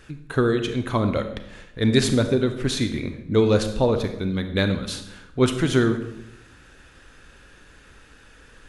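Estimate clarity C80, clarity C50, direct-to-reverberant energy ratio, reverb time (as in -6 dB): 11.5 dB, 9.0 dB, 7.5 dB, 0.85 s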